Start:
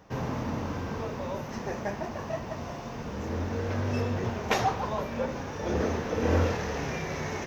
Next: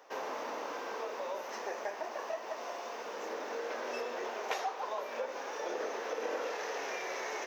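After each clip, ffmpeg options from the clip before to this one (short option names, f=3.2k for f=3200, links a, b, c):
-af "highpass=f=420:w=0.5412,highpass=f=420:w=1.3066,acompressor=threshold=-35dB:ratio=3"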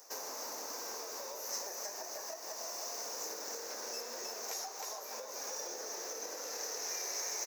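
-af "aecho=1:1:313:0.562,acompressor=threshold=-38dB:ratio=6,aexciter=amount=10.7:drive=7.2:freq=4.8k,volume=-5dB"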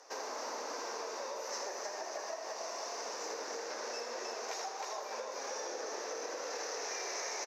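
-af "highpass=250,lowpass=3.9k,aecho=1:1:81:0.447,volume=4.5dB"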